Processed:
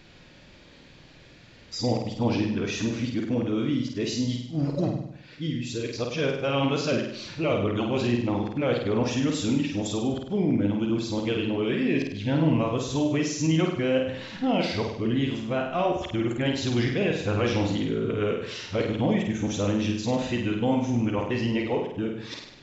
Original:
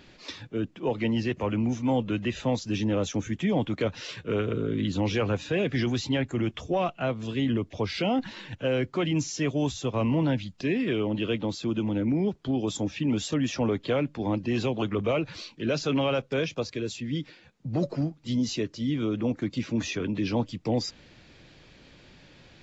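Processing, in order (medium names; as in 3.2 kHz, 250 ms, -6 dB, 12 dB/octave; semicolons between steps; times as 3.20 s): reverse the whole clip; flutter echo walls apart 8.6 m, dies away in 0.71 s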